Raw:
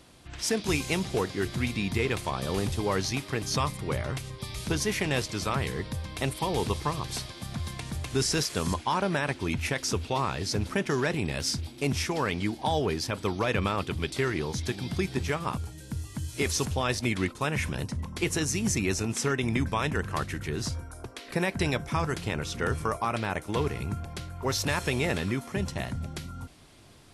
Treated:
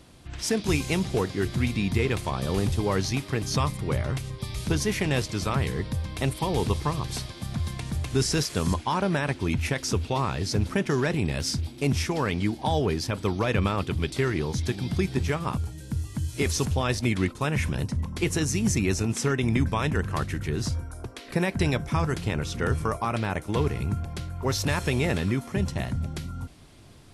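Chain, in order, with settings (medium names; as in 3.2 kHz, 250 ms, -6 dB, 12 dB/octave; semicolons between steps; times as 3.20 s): bass shelf 290 Hz +6 dB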